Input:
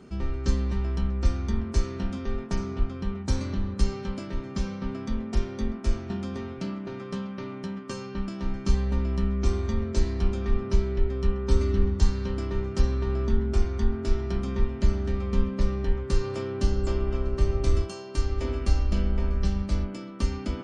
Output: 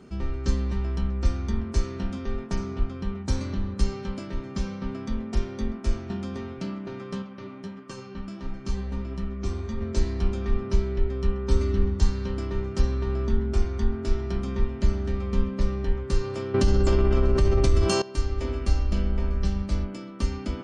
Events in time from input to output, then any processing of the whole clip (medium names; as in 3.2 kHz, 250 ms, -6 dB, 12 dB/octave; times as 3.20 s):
7.22–9.81 s: flange 1.5 Hz, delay 5.7 ms, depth 6.4 ms, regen +47%
16.54–18.02 s: level flattener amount 70%